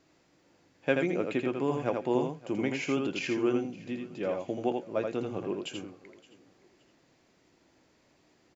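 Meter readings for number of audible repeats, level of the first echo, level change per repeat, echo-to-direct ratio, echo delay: 4, -4.5 dB, no regular repeats, -4.5 dB, 82 ms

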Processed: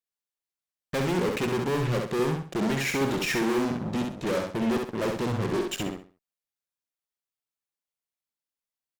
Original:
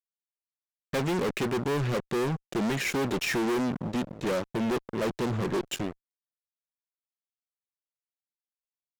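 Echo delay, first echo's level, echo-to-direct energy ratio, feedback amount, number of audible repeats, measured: 66 ms, -4.0 dB, -3.5 dB, 30%, 3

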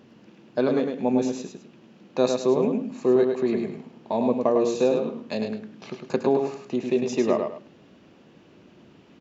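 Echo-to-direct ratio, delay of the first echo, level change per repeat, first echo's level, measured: -4.5 dB, 104 ms, -11.0 dB, -5.0 dB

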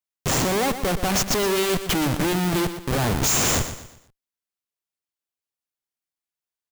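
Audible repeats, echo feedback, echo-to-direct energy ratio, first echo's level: 3, 37%, -10.5 dB, -11.0 dB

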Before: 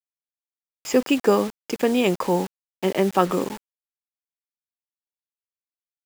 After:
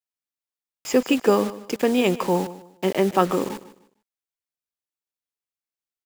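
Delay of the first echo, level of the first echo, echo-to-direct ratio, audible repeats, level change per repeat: 151 ms, -16.0 dB, -15.5 dB, 2, -11.5 dB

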